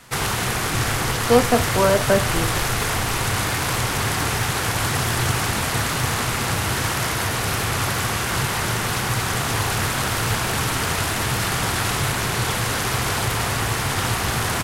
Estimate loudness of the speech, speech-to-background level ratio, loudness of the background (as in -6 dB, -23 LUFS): -20.5 LUFS, 1.0 dB, -21.5 LUFS